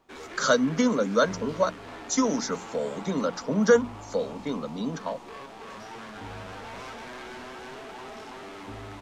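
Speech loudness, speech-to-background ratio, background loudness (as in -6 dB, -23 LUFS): -26.5 LUFS, 15.0 dB, -41.5 LUFS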